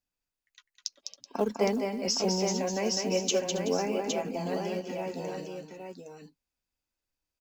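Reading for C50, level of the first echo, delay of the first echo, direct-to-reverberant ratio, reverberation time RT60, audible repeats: no reverb audible, −5.0 dB, 204 ms, no reverb audible, no reverb audible, 4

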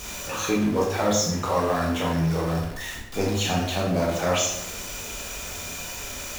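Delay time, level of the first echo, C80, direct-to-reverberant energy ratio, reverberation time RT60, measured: no echo audible, no echo audible, 6.0 dB, −3.5 dB, 0.80 s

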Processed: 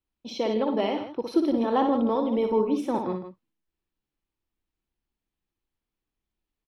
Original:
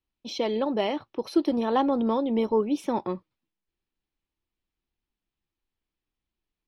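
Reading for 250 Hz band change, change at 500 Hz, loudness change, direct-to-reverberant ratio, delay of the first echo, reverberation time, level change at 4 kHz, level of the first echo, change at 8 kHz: +1.0 dB, +1.0 dB, +0.5 dB, no reverb audible, 60 ms, no reverb audible, −2.0 dB, −6.0 dB, can't be measured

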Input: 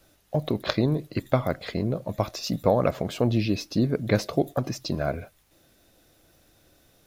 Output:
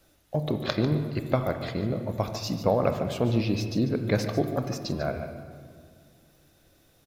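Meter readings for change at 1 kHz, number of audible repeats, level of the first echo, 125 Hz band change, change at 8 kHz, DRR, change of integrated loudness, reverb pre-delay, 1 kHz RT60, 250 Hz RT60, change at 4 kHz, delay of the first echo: −1.5 dB, 1, −11.5 dB, −0.5 dB, −2.0 dB, 6.5 dB, −1.5 dB, 25 ms, 1.8 s, 2.5 s, −2.0 dB, 146 ms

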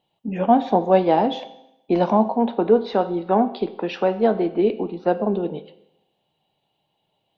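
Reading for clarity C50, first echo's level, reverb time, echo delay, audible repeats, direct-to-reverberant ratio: 14.5 dB, no echo audible, 0.80 s, no echo audible, no echo audible, 11.0 dB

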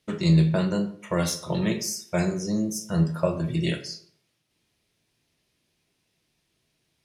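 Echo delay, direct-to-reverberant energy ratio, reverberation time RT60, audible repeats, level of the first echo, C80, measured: no echo audible, 6.0 dB, 0.60 s, no echo audible, no echo audible, 15.0 dB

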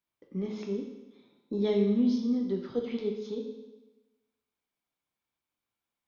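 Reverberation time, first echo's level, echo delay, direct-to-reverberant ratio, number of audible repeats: 1.1 s, no echo audible, no echo audible, 1.0 dB, no echo audible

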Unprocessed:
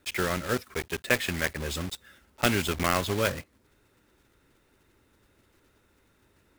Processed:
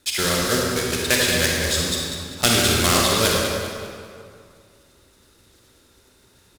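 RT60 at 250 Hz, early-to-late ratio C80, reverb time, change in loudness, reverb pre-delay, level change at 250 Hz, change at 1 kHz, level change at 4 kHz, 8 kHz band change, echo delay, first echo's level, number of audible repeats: 2.2 s, −0.5 dB, 2.2 s, +9.5 dB, 35 ms, +7.5 dB, +7.0 dB, +14.0 dB, +15.5 dB, 197 ms, −9.5 dB, 1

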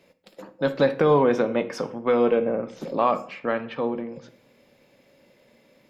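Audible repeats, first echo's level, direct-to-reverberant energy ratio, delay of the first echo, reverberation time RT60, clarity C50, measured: no echo audible, no echo audible, 11.0 dB, no echo audible, 0.55 s, 15.0 dB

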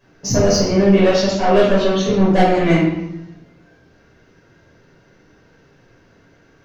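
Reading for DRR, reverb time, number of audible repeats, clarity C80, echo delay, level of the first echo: −8.0 dB, 0.85 s, no echo audible, 4.5 dB, no echo audible, no echo audible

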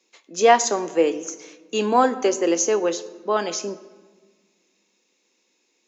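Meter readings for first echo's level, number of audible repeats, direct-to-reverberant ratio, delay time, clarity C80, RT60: no echo audible, no echo audible, 12.0 dB, no echo audible, 17.0 dB, 1.5 s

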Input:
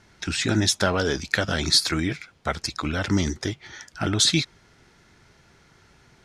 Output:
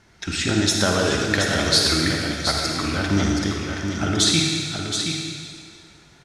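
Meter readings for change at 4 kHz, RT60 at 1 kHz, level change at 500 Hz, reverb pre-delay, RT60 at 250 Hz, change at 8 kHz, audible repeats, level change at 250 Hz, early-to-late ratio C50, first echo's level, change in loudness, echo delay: +3.5 dB, 2.1 s, +3.5 dB, 39 ms, 1.9 s, +3.5 dB, 1, +4.0 dB, −1.0 dB, −6.5 dB, +3.0 dB, 724 ms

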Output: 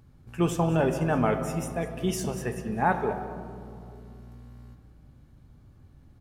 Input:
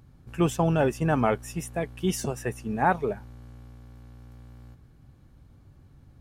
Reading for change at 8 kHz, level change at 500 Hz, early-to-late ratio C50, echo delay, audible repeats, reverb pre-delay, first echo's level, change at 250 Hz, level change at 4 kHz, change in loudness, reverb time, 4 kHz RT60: −1.5 dB, −0.5 dB, 8.0 dB, 201 ms, 1, 5 ms, −15.5 dB, 0.0 dB, −1.5 dB, −0.5 dB, 2.6 s, 1.3 s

